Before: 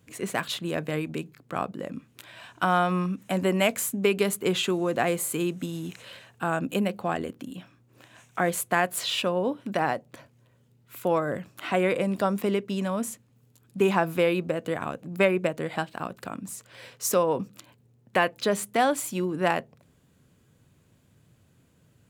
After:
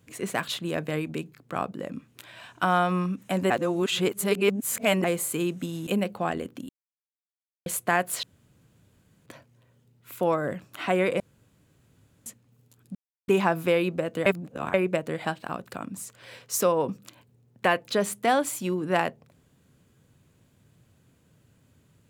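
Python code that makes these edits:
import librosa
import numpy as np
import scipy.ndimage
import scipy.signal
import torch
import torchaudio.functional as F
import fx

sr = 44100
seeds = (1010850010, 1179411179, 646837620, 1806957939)

y = fx.edit(x, sr, fx.reverse_span(start_s=3.5, length_s=1.54),
    fx.cut(start_s=5.87, length_s=0.84),
    fx.silence(start_s=7.53, length_s=0.97),
    fx.room_tone_fill(start_s=9.07, length_s=1.03),
    fx.room_tone_fill(start_s=12.04, length_s=1.06),
    fx.insert_silence(at_s=13.79, length_s=0.33),
    fx.reverse_span(start_s=14.77, length_s=0.48), tone=tone)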